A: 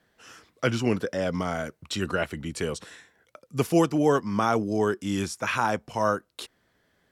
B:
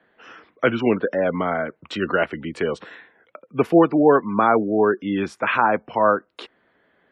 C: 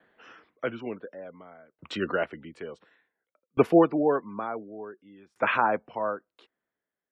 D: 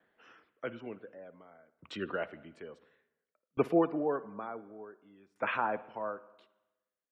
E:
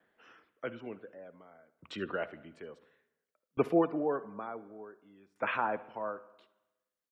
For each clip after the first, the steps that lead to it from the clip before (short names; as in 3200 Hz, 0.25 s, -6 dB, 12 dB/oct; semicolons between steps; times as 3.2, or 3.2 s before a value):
three-band isolator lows -14 dB, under 200 Hz, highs -20 dB, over 3100 Hz; spectral gate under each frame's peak -30 dB strong; gain +7.5 dB
dynamic EQ 580 Hz, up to +3 dB, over -31 dBFS, Q 1.3; dB-ramp tremolo decaying 0.56 Hz, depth 31 dB; gain -2 dB
spring tank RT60 1 s, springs 51/59 ms, chirp 25 ms, DRR 16.5 dB; gain -8 dB
echo 71 ms -21.5 dB